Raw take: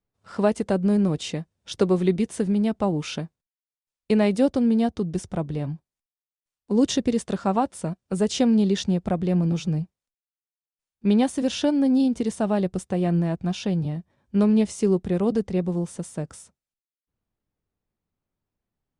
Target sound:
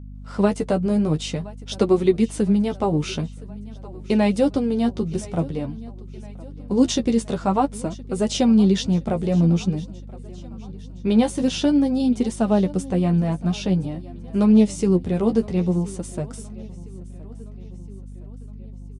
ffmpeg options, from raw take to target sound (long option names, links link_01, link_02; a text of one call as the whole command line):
ffmpeg -i in.wav -af "equalizer=frequency=1700:width_type=o:width=0.26:gain=-4.5,aecho=1:1:1017|2034|3051|4068:0.0891|0.0508|0.029|0.0165,flanger=delay=7.6:depth=5.9:regen=20:speed=0.49:shape=triangular,aeval=exprs='val(0)+0.00794*(sin(2*PI*50*n/s)+sin(2*PI*2*50*n/s)/2+sin(2*PI*3*50*n/s)/3+sin(2*PI*4*50*n/s)/4+sin(2*PI*5*50*n/s)/5)':channel_layout=same,volume=6dB" out.wav